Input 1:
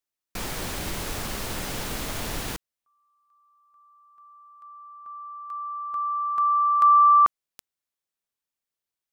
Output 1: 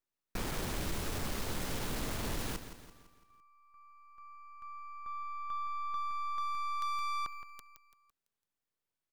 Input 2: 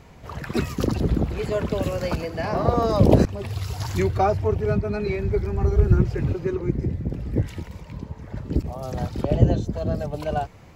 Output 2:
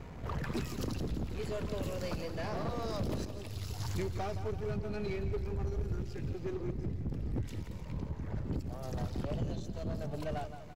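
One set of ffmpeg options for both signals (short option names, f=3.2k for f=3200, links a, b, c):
-filter_complex "[0:a]aeval=exprs='if(lt(val(0),0),0.447*val(0),val(0))':c=same,acrossover=split=3100[a][b];[a]acompressor=threshold=-34dB:ratio=6:attack=46:release=751:detection=rms[c];[c][b]amix=inputs=2:normalize=0,highshelf=f=2.1k:g=-9.5,aecho=1:1:168|336|504|672|840:0.224|0.105|0.0495|0.0232|0.0109,asoftclip=type=tanh:threshold=-33dB,equalizer=f=710:w=1.5:g=-2.5,volume=5dB"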